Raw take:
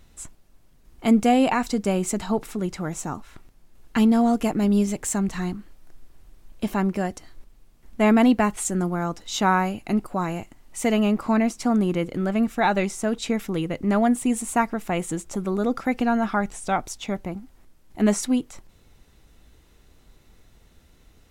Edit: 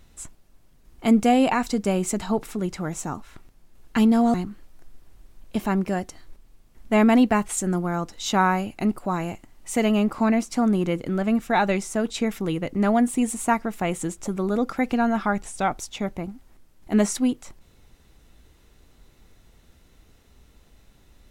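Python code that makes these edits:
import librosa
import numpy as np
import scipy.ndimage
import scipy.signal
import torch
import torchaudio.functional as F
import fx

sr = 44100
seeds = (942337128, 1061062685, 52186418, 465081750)

y = fx.edit(x, sr, fx.cut(start_s=4.34, length_s=1.08), tone=tone)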